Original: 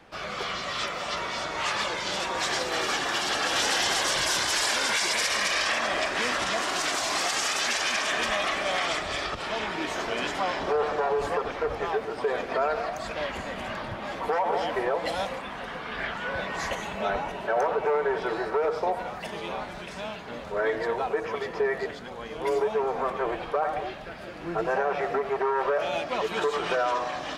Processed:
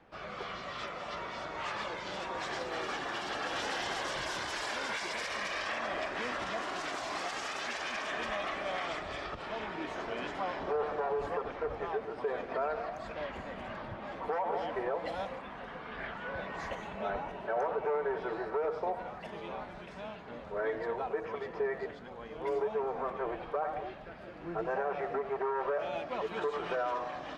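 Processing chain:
low-pass filter 1,800 Hz 6 dB per octave
level −6.5 dB

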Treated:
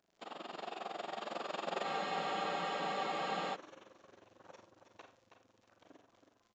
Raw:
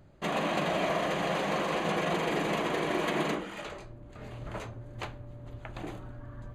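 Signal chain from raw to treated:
fade-out on the ending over 0.56 s
source passing by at 0:02.36, 38 m/s, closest 11 metres
high-pass filter 330 Hz 12 dB per octave
parametric band 2,100 Hz −7.5 dB 0.36 octaves
in parallel at −2.5 dB: downward compressor, threshold −43 dBFS, peak gain reduction 13.5 dB
on the sum: amplitude modulation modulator 22 Hz, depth 100%
surface crackle 72 per second −55 dBFS
downsampling to 16,000 Hz
on a send: repeating echo 323 ms, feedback 20%, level −8 dB
on the sum: four-comb reverb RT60 0.35 s, combs from 33 ms, DRR 8 dB
frozen spectrum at 0:01.85, 1.68 s
level +1 dB

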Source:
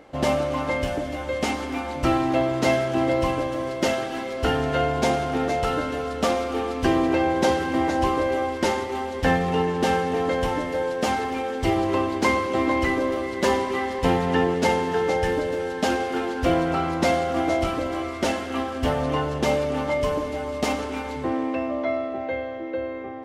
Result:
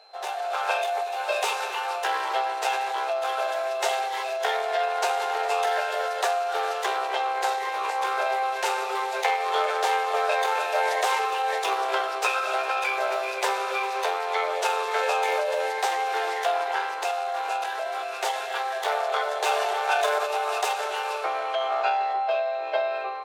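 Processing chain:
harmonic generator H 2 −6 dB, 6 −31 dB, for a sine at −6.5 dBFS
downward compressor 2.5 to 1, threshold −24 dBFS, peak gain reduction 8 dB
single-tap delay 406 ms −20.5 dB
automatic gain control gain up to 11 dB
Butterworth high-pass 400 Hz 96 dB per octave
formants moved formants +3 semitones
steady tone 4,100 Hz −49 dBFS
level −5 dB

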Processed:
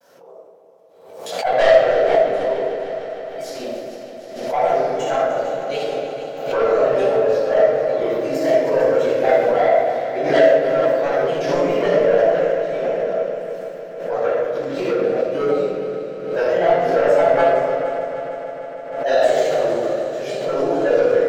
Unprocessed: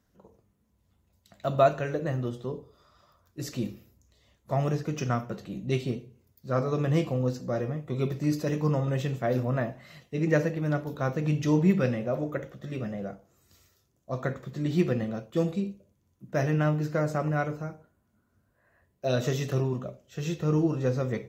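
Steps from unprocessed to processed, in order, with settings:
high-pass with resonance 550 Hz, resonance Q 4.9
soft clipping −17 dBFS, distortion −9 dB
granular cloud, spray 20 ms, pitch spread up and down by 3 semitones
echo machine with several playback heads 152 ms, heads second and third, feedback 66%, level −12.5 dB
rectangular room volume 950 cubic metres, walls mixed, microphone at 8 metres
background raised ahead of every attack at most 61 dB per second
level −4.5 dB

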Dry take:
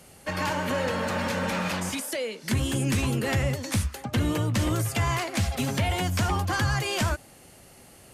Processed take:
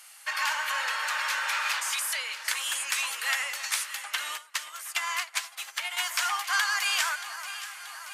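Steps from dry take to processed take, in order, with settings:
high-pass filter 1,100 Hz 24 dB per octave
delay that swaps between a low-pass and a high-pass 315 ms, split 1,800 Hz, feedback 79%, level −10.5 dB
0:04.35–0:05.97: expander for the loud parts 2.5 to 1, over −42 dBFS
level +4 dB

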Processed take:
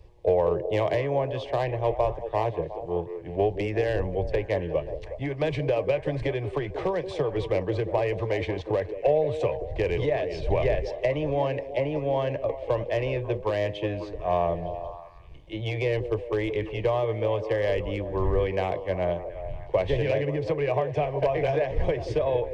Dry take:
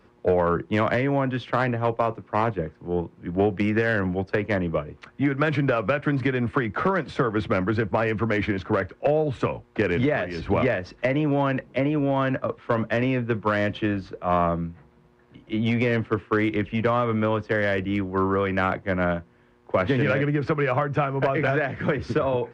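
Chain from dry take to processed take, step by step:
wind on the microphone 86 Hz −38 dBFS
phaser with its sweep stopped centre 570 Hz, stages 4
echo through a band-pass that steps 182 ms, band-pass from 380 Hz, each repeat 0.7 octaves, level −7 dB

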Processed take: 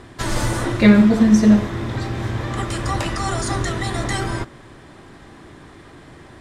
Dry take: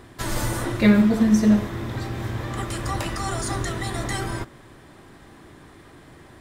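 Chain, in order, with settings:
low-pass filter 8,800 Hz 12 dB per octave
level +4.5 dB

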